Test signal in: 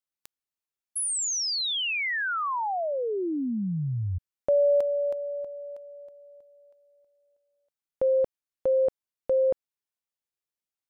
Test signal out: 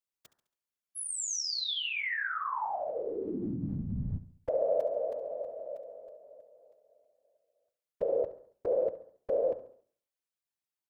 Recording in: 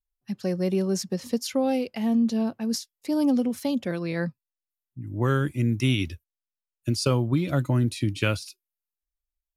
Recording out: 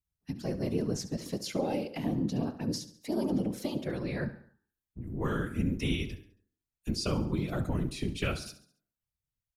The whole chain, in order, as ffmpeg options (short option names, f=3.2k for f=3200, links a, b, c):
-filter_complex "[0:a]acrossover=split=8200[a][b];[b]acompressor=threshold=-44dB:ratio=4:attack=1:release=60[c];[a][c]amix=inputs=2:normalize=0,bandreject=f=70.87:t=h:w=4,bandreject=f=141.74:t=h:w=4,bandreject=f=212.61:t=h:w=4,bandreject=f=283.48:t=h:w=4,bandreject=f=354.35:t=h:w=4,bandreject=f=425.22:t=h:w=4,bandreject=f=496.09:t=h:w=4,bandreject=f=566.96:t=h:w=4,bandreject=f=637.83:t=h:w=4,bandreject=f=708.7:t=h:w=4,bandreject=f=779.57:t=h:w=4,bandreject=f=850.44:t=h:w=4,bandreject=f=921.31:t=h:w=4,bandreject=f=992.18:t=h:w=4,bandreject=f=1.06305k:t=h:w=4,bandreject=f=1.13392k:t=h:w=4,bandreject=f=1.20479k:t=h:w=4,bandreject=f=1.27566k:t=h:w=4,bandreject=f=1.34653k:t=h:w=4,bandreject=f=1.4174k:t=h:w=4,bandreject=f=1.48827k:t=h:w=4,bandreject=f=1.55914k:t=h:w=4,bandreject=f=1.63001k:t=h:w=4,bandreject=f=1.70088k:t=h:w=4,bandreject=f=1.77175k:t=h:w=4,bandreject=f=1.84262k:t=h:w=4,asplit=2[d][e];[e]acompressor=threshold=-34dB:ratio=6:release=126,volume=2dB[f];[d][f]amix=inputs=2:normalize=0,afftfilt=real='hypot(re,im)*cos(2*PI*random(0))':imag='hypot(re,im)*sin(2*PI*random(1))':win_size=512:overlap=0.75,aecho=1:1:69|138|207|276:0.178|0.08|0.036|0.0162,volume=-3.5dB"